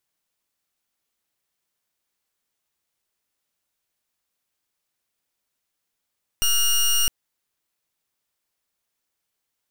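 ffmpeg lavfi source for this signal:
-f lavfi -i "aevalsrc='0.112*(2*lt(mod(2850*t,1),0.16)-1)':d=0.66:s=44100"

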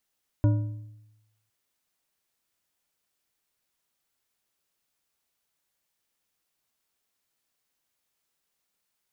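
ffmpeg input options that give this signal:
-f lavfi -i "aevalsrc='0.158*pow(10,-3*t/0.98)*sin(2*PI*108*t)+0.0631*pow(10,-3*t/0.723)*sin(2*PI*297.8*t)+0.0251*pow(10,-3*t/0.591)*sin(2*PI*583.6*t)+0.01*pow(10,-3*t/0.508)*sin(2*PI*964.8*t)+0.00398*pow(10,-3*t/0.45)*sin(2*PI*1440.7*t)':d=1.06:s=44100"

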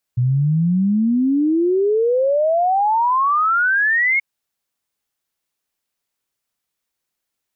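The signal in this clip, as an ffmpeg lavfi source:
-f lavfi -i "aevalsrc='0.211*clip(min(t,4.03-t)/0.01,0,1)*sin(2*PI*120*4.03/log(2200/120)*(exp(log(2200/120)*t/4.03)-1))':d=4.03:s=44100"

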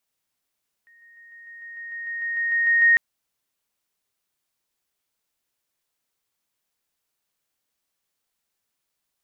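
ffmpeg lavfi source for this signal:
-f lavfi -i "aevalsrc='pow(10,(-51.5+3*floor(t/0.15))/20)*sin(2*PI*1860*t)':d=2.1:s=44100"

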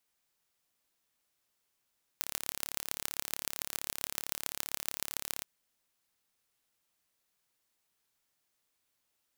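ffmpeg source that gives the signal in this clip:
-f lavfi -i "aevalsrc='0.596*eq(mod(n,1242),0)*(0.5+0.5*eq(mod(n,6210),0))':d=3.22:s=44100"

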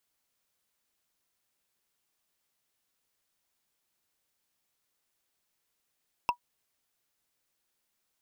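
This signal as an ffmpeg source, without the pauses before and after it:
-f lavfi -i "aevalsrc='0.133*pow(10,-3*t/0.09)*sin(2*PI*968*t)+0.0668*pow(10,-3*t/0.027)*sin(2*PI*2668.8*t)+0.0335*pow(10,-3*t/0.012)*sin(2*PI*5231.1*t)+0.0168*pow(10,-3*t/0.007)*sin(2*PI*8647.1*t)+0.00841*pow(10,-3*t/0.004)*sin(2*PI*12913.1*t)':d=0.45:s=44100"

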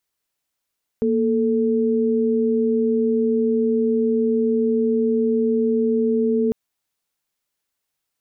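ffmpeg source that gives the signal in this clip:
-f lavfi -i "aevalsrc='0.112*(sin(2*PI*233.08*t)+sin(2*PI*440*t))':d=5.5:s=44100"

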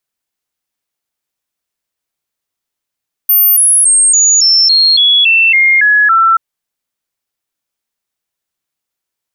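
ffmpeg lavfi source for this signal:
-f lavfi -i "aevalsrc='0.562*clip(min(mod(t,0.28),0.28-mod(t,0.28))/0.005,0,1)*sin(2*PI*13500*pow(2,-floor(t/0.28)/3)*mod(t,0.28))':d=3.08:s=44100"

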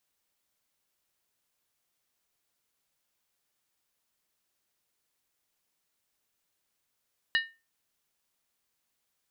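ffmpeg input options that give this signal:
-f lavfi -i "aevalsrc='0.0944*pow(10,-3*t/0.28)*sin(2*PI*1820*t)+0.0531*pow(10,-3*t/0.222)*sin(2*PI*2901.1*t)+0.0299*pow(10,-3*t/0.192)*sin(2*PI*3887.5*t)+0.0168*pow(10,-3*t/0.185)*sin(2*PI*4178.7*t)+0.00944*pow(10,-3*t/0.172)*sin(2*PI*4828.5*t)':d=0.63:s=44100"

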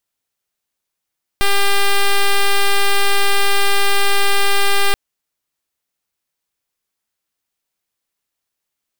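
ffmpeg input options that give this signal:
-f lavfi -i "aevalsrc='0.251*(2*lt(mod(399*t,1),0.06)-1)':d=3.53:s=44100"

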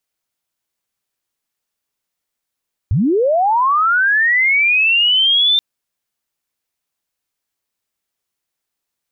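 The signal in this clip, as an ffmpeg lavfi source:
-f lavfi -i "aevalsrc='pow(10,(-11.5+1.5*t/2.68)/20)*sin(2*PI*(77*t+3523*t*t/(2*2.68)))':d=2.68:s=44100"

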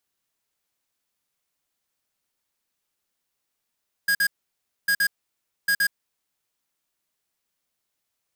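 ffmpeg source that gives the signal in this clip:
-f lavfi -i "aevalsrc='0.0944*(2*lt(mod(1640*t,1),0.5)-1)*clip(min(mod(mod(t,0.8),0.12),0.07-mod(mod(t,0.8),0.12))/0.005,0,1)*lt(mod(t,0.8),0.24)':d=2.4:s=44100"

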